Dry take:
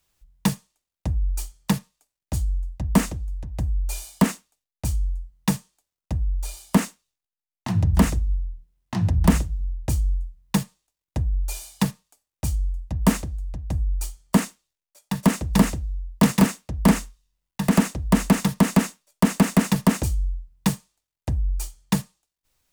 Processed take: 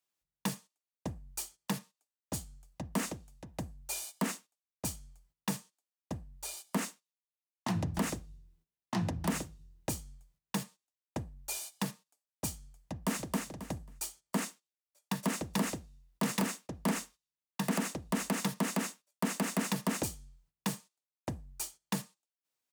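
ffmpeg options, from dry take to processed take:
-filter_complex "[0:a]asplit=2[s0][s1];[s1]afade=t=in:st=12.92:d=0.01,afade=t=out:st=13.45:d=0.01,aecho=0:1:270|540|810:0.501187|0.0751781|0.0112767[s2];[s0][s2]amix=inputs=2:normalize=0,agate=range=0.224:threshold=0.01:ratio=16:detection=peak,highpass=220,alimiter=limit=0.119:level=0:latency=1:release=117,volume=0.75"

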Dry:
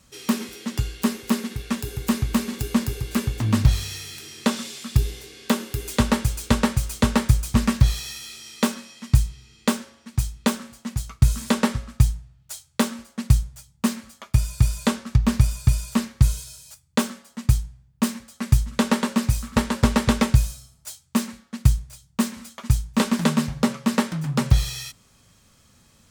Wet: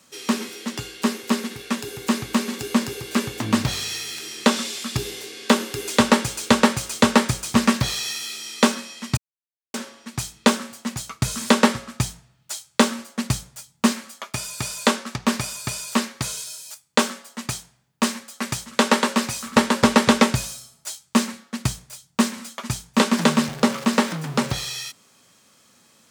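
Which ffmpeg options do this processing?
-filter_complex "[0:a]asettb=1/sr,asplit=3[s0][s1][s2];[s0]atrim=end=13.924[s3];[s1]atrim=start=13.92:end=19.46,asetpts=PTS-STARTPTS,afade=t=in:d=0.004:c=qsin,afade=t=out:st=5.536:d=0.004:c=qsin,lowshelf=f=180:g=-11[s4];[s2]atrim=start=19.456[s5];[s3][s4]acrossfade=d=0.004:c1=hsin:c2=qsin[s6];[s6][s5]acrossfade=d=0.004:c1=qsin:c2=hsin,asettb=1/sr,asplit=3[s7][s8][s9];[s7]atrim=end=23.174[s10];[s8]atrim=start=23.17:end=24.52,asetpts=PTS-STARTPTS,afade=t=in:d=0.004:c=qsin,afade=t=out:st=1.346:d=0.004:c=qsin,aeval=exprs='val(0)+0.5*0.0224*sgn(val(0))':c=same[s11];[s9]atrim=start=24.516[s12];[s10][s11]acrossfade=d=0.004:c1=hsin:c2=qsin[s13];[s13][s12]acrossfade=d=0.004:c1=qsin:c2=hsin,asplit=3[s14][s15][s16];[s14]atrim=end=9.17,asetpts=PTS-STARTPTS,afade=t=out:st=9.166:d=0.004:c=hsin[s17];[s15]atrim=start=9.17:end=9.74,asetpts=PTS-STARTPTS,volume=0[s18];[s16]atrim=start=9.74,asetpts=PTS-STARTPTS,afade=t=in:d=0.004:c=hsin[s19];[s17][s18][s19]concat=n=3:v=0:a=1,acrossover=split=8900[s20][s21];[s21]acompressor=threshold=0.00562:ratio=4:attack=1:release=60[s22];[s20][s22]amix=inputs=2:normalize=0,highpass=250,dynaudnorm=f=410:g=17:m=1.58,volume=1.5"

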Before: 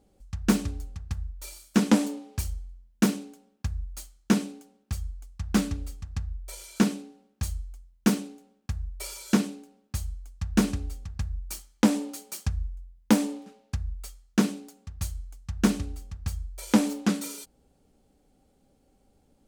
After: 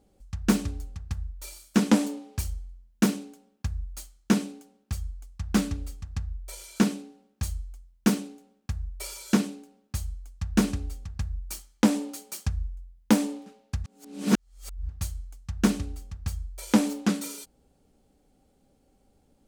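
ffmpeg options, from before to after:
-filter_complex "[0:a]asplit=3[s0][s1][s2];[s0]atrim=end=13.842[s3];[s1]atrim=start=13.838:end=14.892,asetpts=PTS-STARTPTS,areverse[s4];[s2]atrim=start=14.888[s5];[s3][s4]acrossfade=d=0.004:c1=hsin:c2=hsin[s6];[s6][s5]acrossfade=d=0.004:c1=hsin:c2=hsin"

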